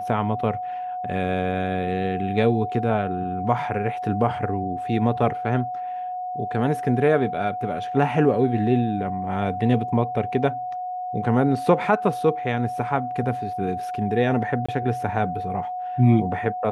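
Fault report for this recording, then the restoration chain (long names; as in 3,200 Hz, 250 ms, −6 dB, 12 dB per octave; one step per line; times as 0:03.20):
whistle 730 Hz −27 dBFS
0:14.66–0:14.69: drop-out 25 ms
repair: notch filter 730 Hz, Q 30
repair the gap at 0:14.66, 25 ms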